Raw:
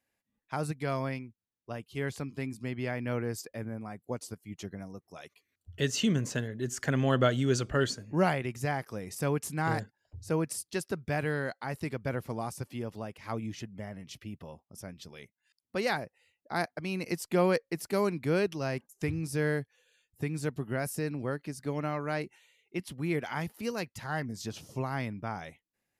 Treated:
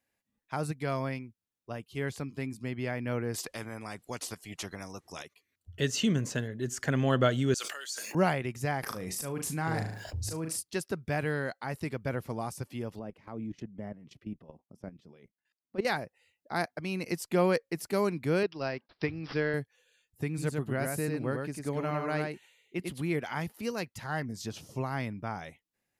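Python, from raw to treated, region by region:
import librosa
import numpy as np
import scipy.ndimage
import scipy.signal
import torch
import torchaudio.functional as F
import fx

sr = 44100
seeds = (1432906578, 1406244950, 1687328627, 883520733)

y = fx.chain(x, sr, fx.lowpass(hz=9400.0, slope=12),
    fx.spectral_comp(ratio=2.0), at=(3.34, 5.23))
y = fx.chain(y, sr, fx.highpass(hz=470.0, slope=12),
    fx.differentiator(),
    fx.sustainer(db_per_s=31.0), at=(7.54, 8.15))
y = fx.chain(y, sr, fx.auto_swell(attack_ms=752.0),
    fx.room_flutter(wall_m=6.4, rt60_s=0.25),
    fx.env_flatten(amount_pct=70), at=(8.83, 10.6))
y = fx.chain(y, sr, fx.highpass(hz=220.0, slope=12),
    fx.level_steps(step_db=15),
    fx.tilt_eq(slope=-4.0), at=(12.99, 15.85))
y = fx.chain(y, sr, fx.low_shelf(hz=160.0, db=-11.5),
    fx.transient(attack_db=5, sustain_db=-5),
    fx.resample_bad(factor=4, down='none', up='filtered'), at=(18.43, 19.54))
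y = fx.chain(y, sr, fx.peak_eq(hz=5500.0, db=-6.5, octaves=0.21),
    fx.echo_single(ms=99, db=-3.5), at=(20.28, 23.02))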